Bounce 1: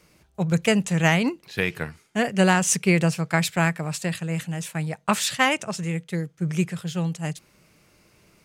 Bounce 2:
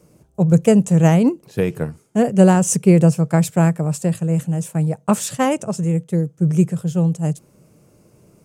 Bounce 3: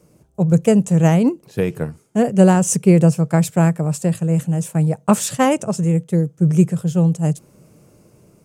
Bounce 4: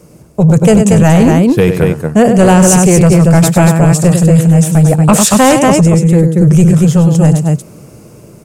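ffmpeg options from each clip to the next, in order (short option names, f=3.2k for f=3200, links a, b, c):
-af "equalizer=f=125:t=o:w=1:g=9,equalizer=f=250:t=o:w=1:g=5,equalizer=f=500:t=o:w=1:g=7,equalizer=f=2k:t=o:w=1:g=-9,equalizer=f=4k:t=o:w=1:g=-9,equalizer=f=8k:t=o:w=1:g=4,volume=1dB"
-af "dynaudnorm=f=290:g=7:m=11.5dB,volume=-1dB"
-af "aecho=1:1:99.13|233.2:0.316|0.501,apsyclip=15dB,volume=-2dB"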